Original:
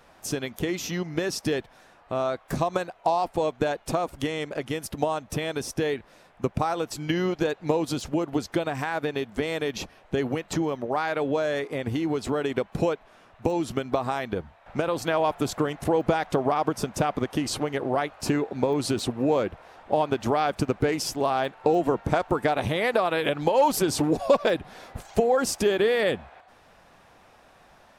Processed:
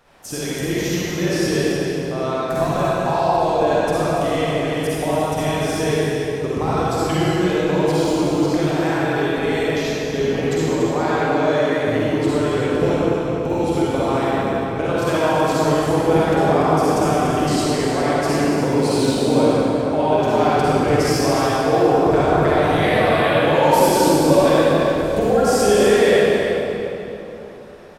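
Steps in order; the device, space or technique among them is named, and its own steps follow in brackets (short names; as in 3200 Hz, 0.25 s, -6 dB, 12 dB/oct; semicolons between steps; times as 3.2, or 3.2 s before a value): cave (echo 0.288 s -9 dB; reverb RT60 3.2 s, pre-delay 42 ms, DRR -9 dB); gain -2 dB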